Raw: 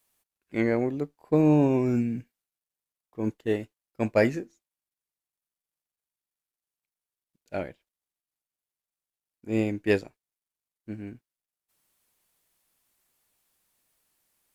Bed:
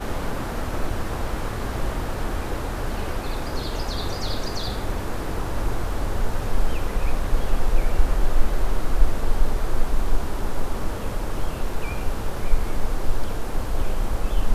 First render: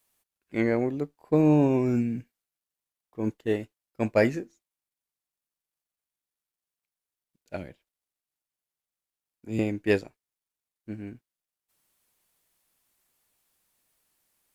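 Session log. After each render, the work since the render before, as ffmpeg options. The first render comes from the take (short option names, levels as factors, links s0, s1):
-filter_complex "[0:a]asettb=1/sr,asplit=3[s0][s1][s2];[s0]atrim=end=7.564[s3];[s1]atrim=start=7.56:end=9.59,asetpts=PTS-STARTPTS,afade=t=in:d=0.004:c=qsin,afade=t=out:st=2.026:d=0.004:c=qsin,acrossover=split=280|3000[s4][s5][s6];[s5]acompressor=threshold=0.00794:ratio=4:attack=3.2:release=140:knee=2.83:detection=peak[s7];[s4][s7][s6]amix=inputs=3:normalize=0[s8];[s2]atrim=start=9.586[s9];[s3][s8]acrossfade=d=0.004:c1=hsin:c2=qsin[s10];[s10][s9]acrossfade=d=0.004:c1=qsin:c2=hsin"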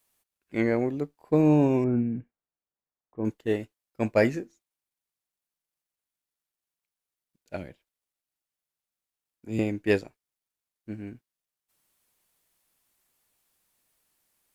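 -filter_complex "[0:a]asettb=1/sr,asplit=3[s0][s1][s2];[s0]atrim=end=1.844[s3];[s1]atrim=start=1.84:end=3.25,asetpts=PTS-STARTPTS,afade=t=in:d=0.004:c=qsin,afade=t=out:st=1.406:d=0.004:c=qsin,lowpass=1300[s4];[s2]atrim=start=3.246[s5];[s3][s4]acrossfade=d=0.004:c1=hsin:c2=qsin[s6];[s6][s5]acrossfade=d=0.004:c1=qsin:c2=hsin"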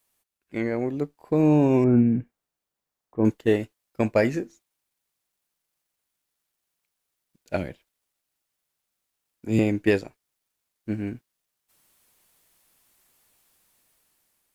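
-af "alimiter=limit=0.133:level=0:latency=1:release=320,dynaudnorm=f=510:g=5:m=2.66"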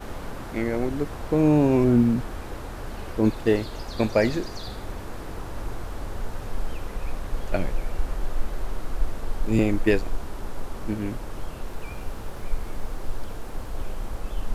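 -filter_complex "[1:a]volume=0.422[s0];[0:a][s0]amix=inputs=2:normalize=0"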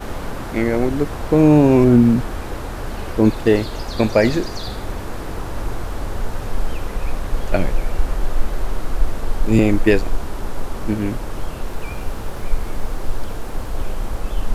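-af "volume=2.37,alimiter=limit=0.708:level=0:latency=1"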